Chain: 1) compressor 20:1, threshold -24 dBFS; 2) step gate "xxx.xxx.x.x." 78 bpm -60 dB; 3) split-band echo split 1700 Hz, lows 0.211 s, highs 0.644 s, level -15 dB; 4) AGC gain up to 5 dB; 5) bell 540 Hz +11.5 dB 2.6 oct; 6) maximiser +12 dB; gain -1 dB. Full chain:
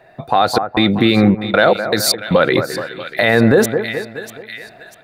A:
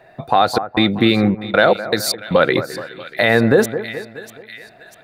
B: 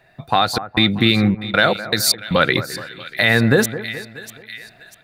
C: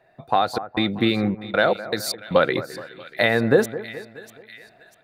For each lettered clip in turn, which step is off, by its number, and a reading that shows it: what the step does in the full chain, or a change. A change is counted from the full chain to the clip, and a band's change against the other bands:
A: 4, crest factor change +2.0 dB; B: 5, 500 Hz band -6.0 dB; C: 6, crest factor change +6.5 dB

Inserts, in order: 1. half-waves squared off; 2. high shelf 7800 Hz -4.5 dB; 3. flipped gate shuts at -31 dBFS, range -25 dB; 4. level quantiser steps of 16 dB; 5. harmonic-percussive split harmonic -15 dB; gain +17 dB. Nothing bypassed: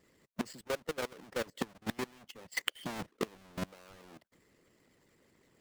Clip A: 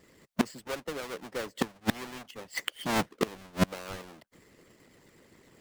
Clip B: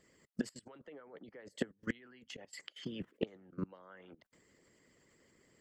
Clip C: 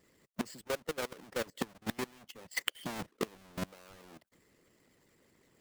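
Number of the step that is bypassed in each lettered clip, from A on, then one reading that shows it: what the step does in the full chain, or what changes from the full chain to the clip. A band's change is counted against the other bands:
4, crest factor change -6.5 dB; 1, distortion -5 dB; 2, 8 kHz band +2.0 dB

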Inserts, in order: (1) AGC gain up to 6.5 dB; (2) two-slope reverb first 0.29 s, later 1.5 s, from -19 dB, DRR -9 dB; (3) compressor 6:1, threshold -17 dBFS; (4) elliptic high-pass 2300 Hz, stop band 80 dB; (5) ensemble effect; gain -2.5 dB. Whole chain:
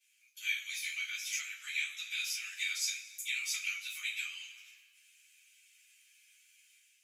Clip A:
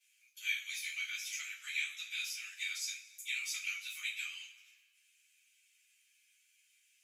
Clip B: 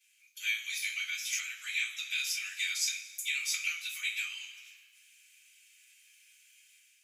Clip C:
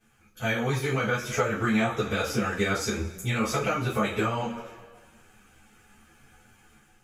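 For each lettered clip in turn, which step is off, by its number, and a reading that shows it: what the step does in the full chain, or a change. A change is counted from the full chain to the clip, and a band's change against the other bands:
1, momentary loudness spread change -1 LU; 5, loudness change +3.0 LU; 4, 1 kHz band +31.5 dB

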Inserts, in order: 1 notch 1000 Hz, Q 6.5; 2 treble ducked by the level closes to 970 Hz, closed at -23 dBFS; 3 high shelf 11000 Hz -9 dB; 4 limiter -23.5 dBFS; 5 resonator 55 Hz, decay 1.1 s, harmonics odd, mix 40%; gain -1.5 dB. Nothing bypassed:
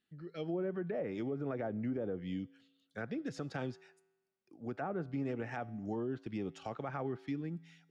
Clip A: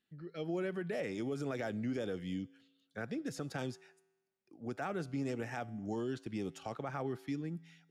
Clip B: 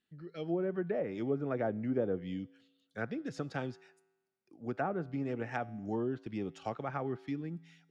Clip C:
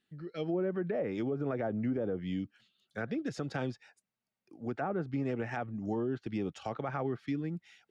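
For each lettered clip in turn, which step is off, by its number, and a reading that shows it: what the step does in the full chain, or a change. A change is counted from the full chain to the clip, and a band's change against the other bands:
2, 4 kHz band +4.5 dB; 4, crest factor change +5.5 dB; 5, loudness change +4.0 LU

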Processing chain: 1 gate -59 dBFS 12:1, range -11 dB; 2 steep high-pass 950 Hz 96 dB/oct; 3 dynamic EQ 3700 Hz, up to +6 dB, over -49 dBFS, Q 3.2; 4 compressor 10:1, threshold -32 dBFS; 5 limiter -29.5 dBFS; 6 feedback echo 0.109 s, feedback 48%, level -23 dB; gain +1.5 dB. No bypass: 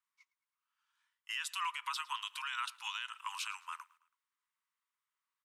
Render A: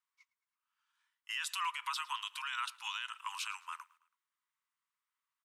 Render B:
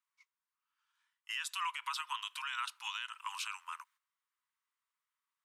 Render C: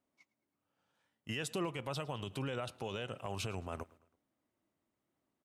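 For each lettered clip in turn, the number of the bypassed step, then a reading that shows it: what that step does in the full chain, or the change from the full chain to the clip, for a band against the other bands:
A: 4, mean gain reduction 3.0 dB; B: 6, echo-to-direct -22.0 dB to none; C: 2, 8 kHz band +2.5 dB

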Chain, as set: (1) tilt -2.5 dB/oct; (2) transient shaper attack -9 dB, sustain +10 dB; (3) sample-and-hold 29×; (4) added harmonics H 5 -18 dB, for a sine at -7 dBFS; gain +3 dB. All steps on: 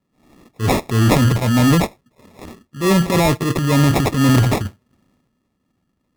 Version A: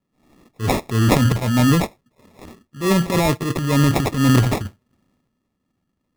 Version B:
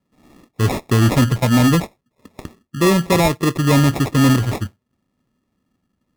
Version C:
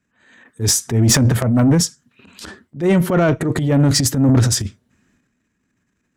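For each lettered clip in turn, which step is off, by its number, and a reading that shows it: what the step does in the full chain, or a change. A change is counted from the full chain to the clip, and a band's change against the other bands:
4, momentary loudness spread change +1 LU; 2, momentary loudness spread change +2 LU; 3, distortion -1 dB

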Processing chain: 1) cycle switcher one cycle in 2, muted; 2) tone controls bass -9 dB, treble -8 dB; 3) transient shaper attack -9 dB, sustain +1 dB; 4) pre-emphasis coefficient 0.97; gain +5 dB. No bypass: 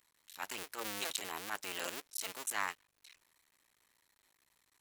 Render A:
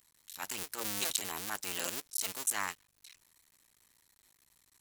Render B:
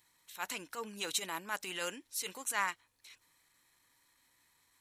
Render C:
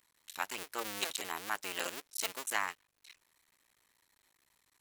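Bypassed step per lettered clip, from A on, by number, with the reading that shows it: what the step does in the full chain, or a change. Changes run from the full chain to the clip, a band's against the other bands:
2, 8 kHz band +5.0 dB; 1, crest factor change -3.0 dB; 3, 125 Hz band -2.5 dB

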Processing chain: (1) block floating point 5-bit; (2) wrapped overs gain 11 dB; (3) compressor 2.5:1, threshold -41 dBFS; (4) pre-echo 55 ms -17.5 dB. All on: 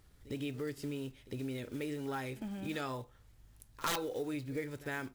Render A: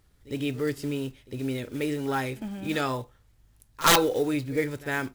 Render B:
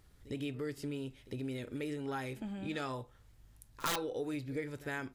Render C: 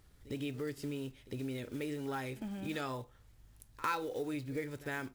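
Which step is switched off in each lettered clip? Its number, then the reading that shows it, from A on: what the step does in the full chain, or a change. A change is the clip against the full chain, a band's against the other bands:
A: 3, mean gain reduction 9.0 dB; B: 1, distortion -22 dB; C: 2, distortion -2 dB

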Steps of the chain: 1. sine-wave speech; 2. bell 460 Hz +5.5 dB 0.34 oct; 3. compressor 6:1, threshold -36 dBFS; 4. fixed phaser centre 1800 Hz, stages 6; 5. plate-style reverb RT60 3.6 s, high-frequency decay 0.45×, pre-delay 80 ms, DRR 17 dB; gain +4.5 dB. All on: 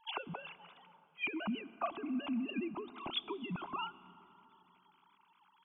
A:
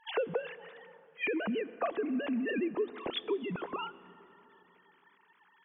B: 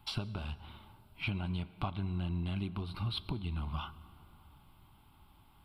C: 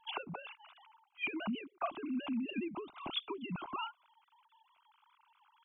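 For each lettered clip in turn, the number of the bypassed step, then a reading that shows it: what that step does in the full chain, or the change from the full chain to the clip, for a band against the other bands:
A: 4, 500 Hz band +9.5 dB; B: 1, 125 Hz band +20.0 dB; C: 5, momentary loudness spread change -9 LU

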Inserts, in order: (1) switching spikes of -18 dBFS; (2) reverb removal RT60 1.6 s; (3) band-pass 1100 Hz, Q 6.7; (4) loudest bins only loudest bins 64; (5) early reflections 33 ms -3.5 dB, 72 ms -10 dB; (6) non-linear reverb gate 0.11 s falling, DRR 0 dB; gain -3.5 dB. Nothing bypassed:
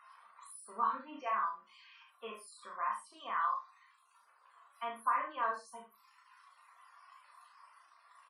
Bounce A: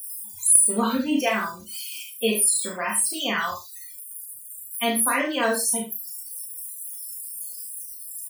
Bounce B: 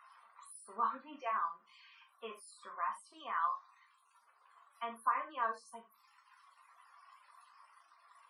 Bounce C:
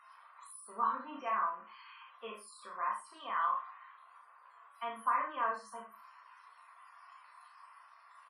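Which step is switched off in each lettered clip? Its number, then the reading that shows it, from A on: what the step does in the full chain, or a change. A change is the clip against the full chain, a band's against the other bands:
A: 3, 1 kHz band -20.0 dB; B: 5, momentary loudness spread change +1 LU; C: 2, momentary loudness spread change +5 LU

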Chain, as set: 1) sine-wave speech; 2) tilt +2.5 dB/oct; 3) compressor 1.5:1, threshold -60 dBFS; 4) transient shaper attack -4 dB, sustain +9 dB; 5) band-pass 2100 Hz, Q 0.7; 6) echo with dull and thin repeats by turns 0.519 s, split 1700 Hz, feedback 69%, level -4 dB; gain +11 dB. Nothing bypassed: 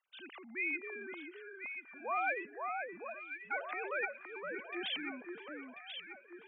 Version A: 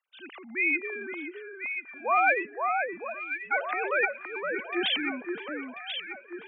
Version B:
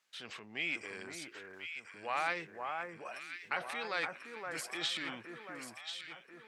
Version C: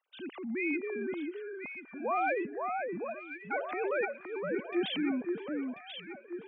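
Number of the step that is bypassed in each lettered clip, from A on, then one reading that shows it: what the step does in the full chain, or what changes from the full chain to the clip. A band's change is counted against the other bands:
3, mean gain reduction 9.0 dB; 1, 1 kHz band +2.0 dB; 5, 2 kHz band -9.5 dB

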